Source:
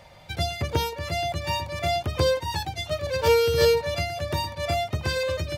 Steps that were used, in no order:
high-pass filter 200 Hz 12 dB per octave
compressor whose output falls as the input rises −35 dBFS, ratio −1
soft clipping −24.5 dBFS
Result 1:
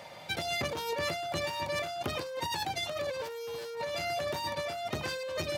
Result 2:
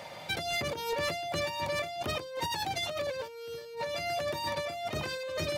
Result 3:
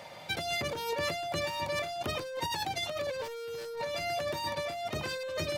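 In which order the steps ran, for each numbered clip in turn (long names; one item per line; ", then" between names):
soft clipping, then high-pass filter, then compressor whose output falls as the input rises
high-pass filter, then compressor whose output falls as the input rises, then soft clipping
high-pass filter, then soft clipping, then compressor whose output falls as the input rises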